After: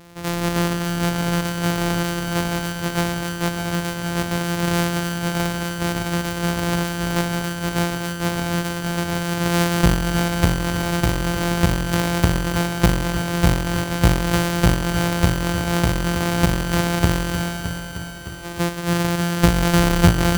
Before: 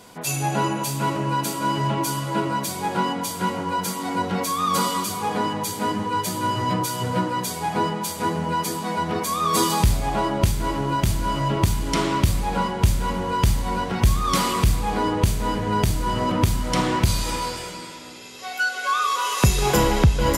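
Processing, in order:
samples sorted by size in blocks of 256 samples
echo machine with several playback heads 307 ms, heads first and second, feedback 63%, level −13 dB
level +1.5 dB

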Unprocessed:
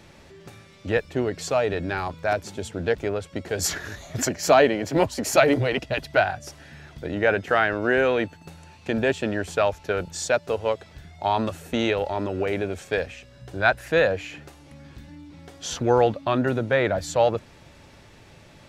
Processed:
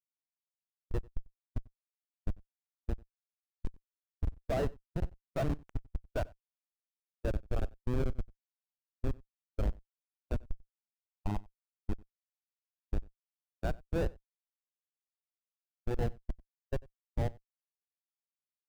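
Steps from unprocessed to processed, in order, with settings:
comparator with hysteresis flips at −14.5 dBFS
slap from a distant wall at 16 metres, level −16 dB
every bin expanded away from the loudest bin 1.5 to 1
level −4 dB

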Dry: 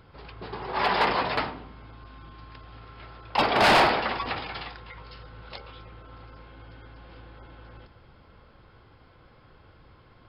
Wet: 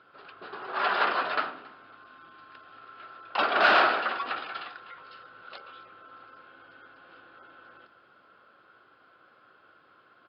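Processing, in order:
loudspeaker in its box 430–3,900 Hz, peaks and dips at 480 Hz −5 dB, 890 Hz −9 dB, 1,400 Hz +8 dB, 2,100 Hz −8 dB, 3,400 Hz −3 dB
repeating echo 274 ms, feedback 36%, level −23.5 dB

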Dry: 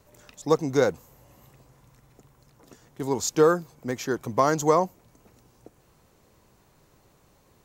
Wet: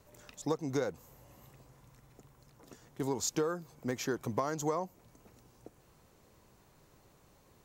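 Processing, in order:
downward compressor 8 to 1, threshold −26 dBFS, peak gain reduction 13 dB
level −3 dB

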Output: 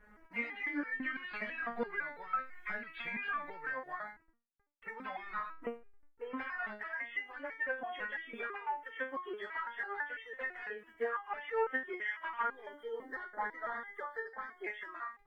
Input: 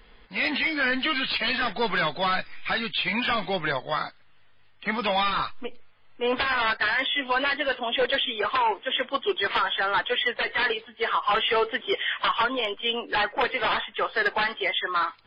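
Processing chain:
hold until the input has moved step −50 dBFS
high shelf with overshoot 2,600 Hz −12.5 dB, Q 3
downward compressor 10 to 1, threshold −28 dBFS, peak gain reduction 15 dB
harmonic generator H 5 −38 dB, 7 −39 dB, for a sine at −16 dBFS
0:12.48–0:14.64: Butterworth band-reject 2,600 Hz, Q 1.9
step-sequenced resonator 6 Hz 210–450 Hz
level +6 dB

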